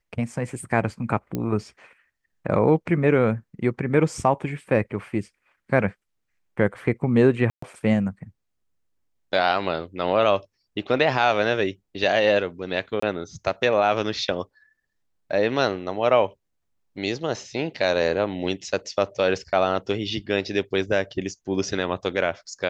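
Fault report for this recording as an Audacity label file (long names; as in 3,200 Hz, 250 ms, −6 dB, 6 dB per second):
1.350000	1.350000	click −14 dBFS
7.500000	7.620000	drop-out 124 ms
13.000000	13.020000	drop-out 24 ms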